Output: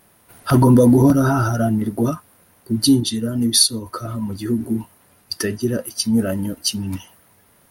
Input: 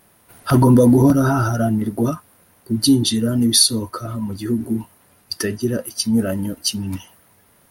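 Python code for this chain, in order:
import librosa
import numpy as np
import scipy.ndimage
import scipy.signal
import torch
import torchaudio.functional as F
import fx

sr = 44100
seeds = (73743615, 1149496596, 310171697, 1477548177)

y = fx.upward_expand(x, sr, threshold_db=-23.0, expansion=1.5, at=(3.0, 3.86))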